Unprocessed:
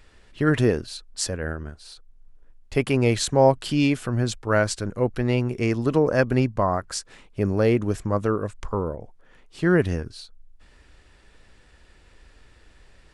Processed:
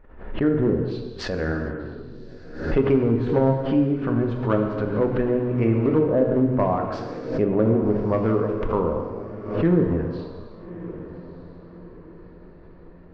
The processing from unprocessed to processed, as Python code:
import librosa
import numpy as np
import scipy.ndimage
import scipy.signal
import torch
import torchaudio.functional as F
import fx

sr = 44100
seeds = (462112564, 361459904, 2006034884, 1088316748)

p1 = fx.env_lowpass_down(x, sr, base_hz=370.0, full_db=-15.0)
p2 = fx.hum_notches(p1, sr, base_hz=50, count=3)
p3 = fx.env_lowpass(p2, sr, base_hz=1100.0, full_db=-23.0)
p4 = fx.low_shelf(p3, sr, hz=340.0, db=-4.5)
p5 = fx.rider(p4, sr, range_db=4, speed_s=2.0)
p6 = p4 + (p5 * 10.0 ** (-2.5 / 20.0))
p7 = np.clip(10.0 ** (12.5 / 20.0) * p6, -1.0, 1.0) / 10.0 ** (12.5 / 20.0)
p8 = fx.spacing_loss(p7, sr, db_at_10k=31)
p9 = fx.echo_diffused(p8, sr, ms=1212, feedback_pct=42, wet_db=-15)
p10 = fx.rev_gated(p9, sr, seeds[0], gate_ms=490, shape='falling', drr_db=1.5)
y = fx.pre_swell(p10, sr, db_per_s=83.0)